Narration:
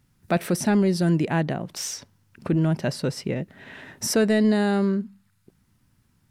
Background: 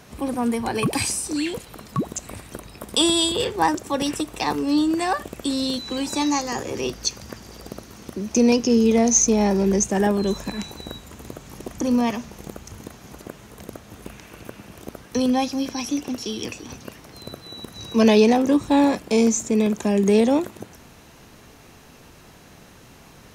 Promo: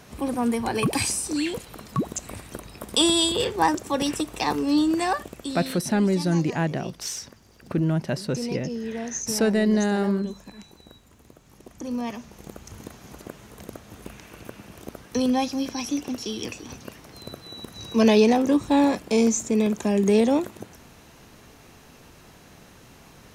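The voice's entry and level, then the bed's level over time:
5.25 s, -1.5 dB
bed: 5.07 s -1 dB
5.97 s -14.5 dB
11.38 s -14.5 dB
12.80 s -2 dB

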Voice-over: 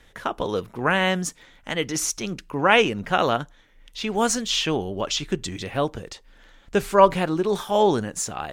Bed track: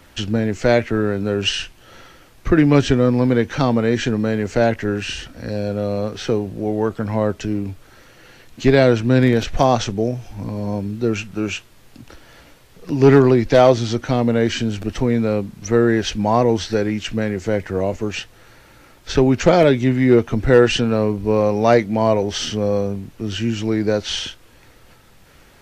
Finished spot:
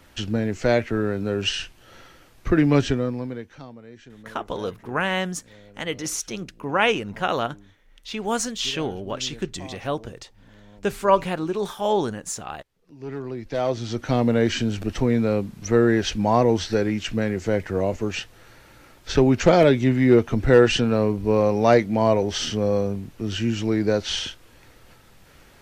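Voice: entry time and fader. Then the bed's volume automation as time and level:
4.10 s, -3.0 dB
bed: 2.83 s -4.5 dB
3.77 s -26.5 dB
12.91 s -26.5 dB
14.15 s -2.5 dB

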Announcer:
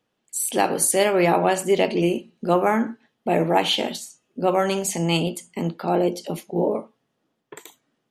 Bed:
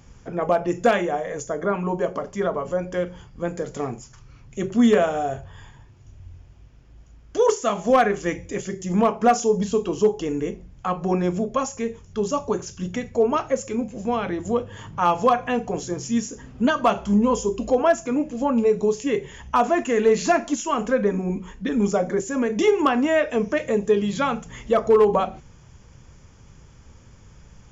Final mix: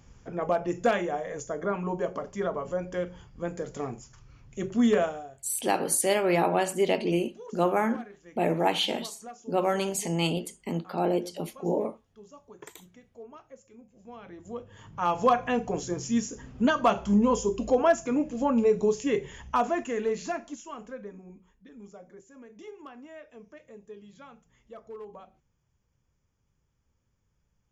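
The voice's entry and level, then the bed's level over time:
5.10 s, -5.5 dB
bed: 5.04 s -6 dB
5.41 s -26.5 dB
13.83 s -26.5 dB
15.30 s -3.5 dB
19.33 s -3.5 dB
21.65 s -26.5 dB

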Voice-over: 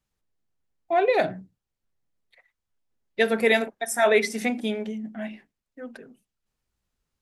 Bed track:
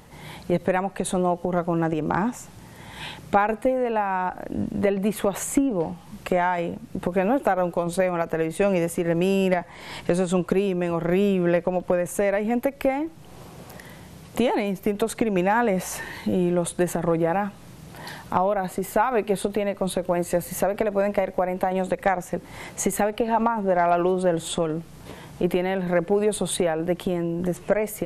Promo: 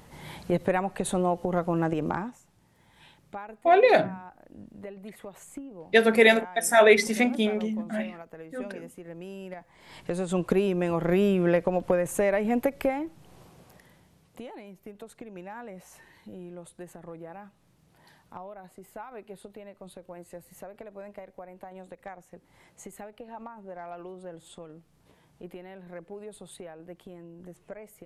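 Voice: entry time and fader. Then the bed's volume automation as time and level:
2.75 s, +2.5 dB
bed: 2.07 s -3 dB
2.42 s -19.5 dB
9.49 s -19.5 dB
10.52 s -2 dB
12.69 s -2 dB
14.44 s -20.5 dB

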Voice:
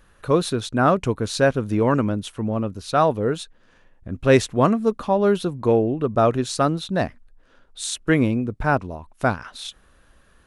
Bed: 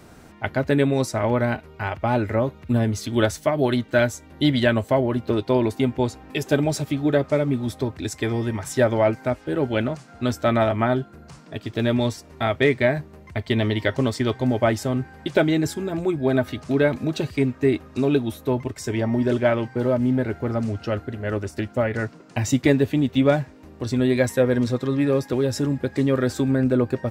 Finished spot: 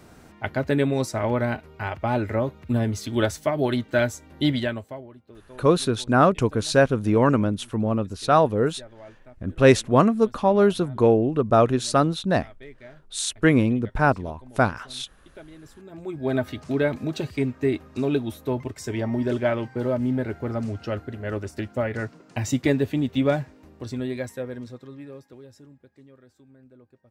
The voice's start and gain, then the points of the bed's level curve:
5.35 s, +0.5 dB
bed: 4.52 s -2.5 dB
5.20 s -26 dB
15.57 s -26 dB
16.31 s -3.5 dB
23.52 s -3.5 dB
26.26 s -33 dB

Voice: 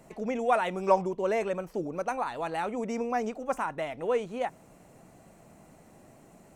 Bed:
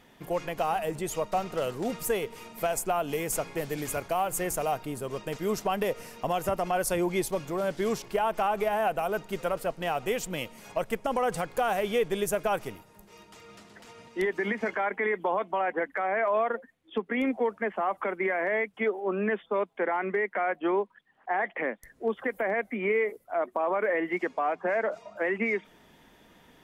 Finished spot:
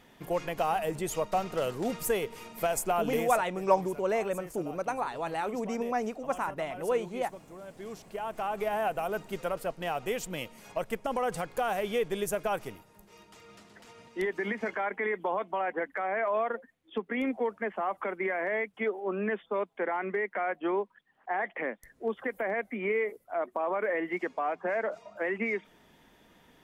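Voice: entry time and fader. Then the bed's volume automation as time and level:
2.80 s, -1.0 dB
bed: 3.18 s -0.5 dB
3.48 s -16.5 dB
7.66 s -16.5 dB
8.70 s -3 dB

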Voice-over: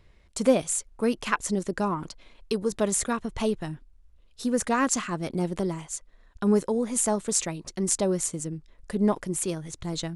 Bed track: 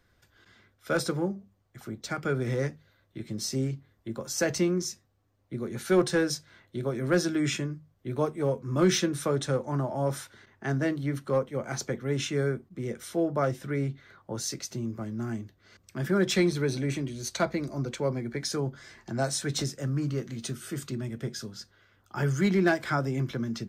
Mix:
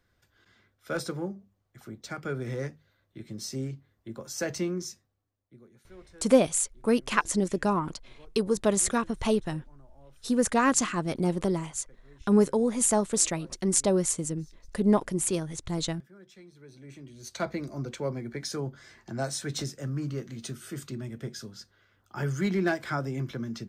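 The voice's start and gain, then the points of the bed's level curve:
5.85 s, +1.0 dB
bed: 5.01 s -4.5 dB
5.90 s -28 dB
16.46 s -28 dB
17.48 s -3 dB

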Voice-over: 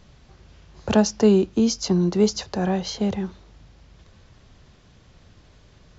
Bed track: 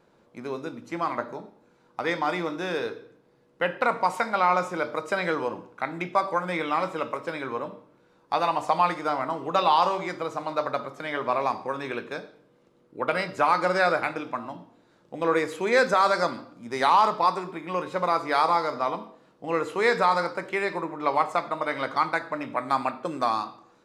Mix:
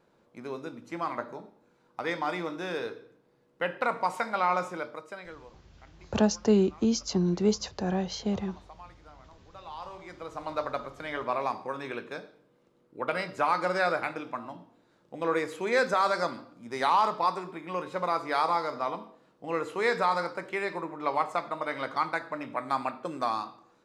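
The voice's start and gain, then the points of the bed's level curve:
5.25 s, -6.0 dB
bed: 4.68 s -4.5 dB
5.66 s -27 dB
9.51 s -27 dB
10.48 s -4.5 dB

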